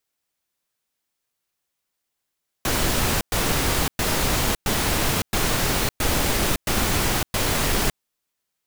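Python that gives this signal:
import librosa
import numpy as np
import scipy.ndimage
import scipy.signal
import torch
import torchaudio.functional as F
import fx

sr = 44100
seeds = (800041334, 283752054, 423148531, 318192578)

y = fx.noise_burst(sr, seeds[0], colour='pink', on_s=0.56, off_s=0.11, bursts=8, level_db=-21.5)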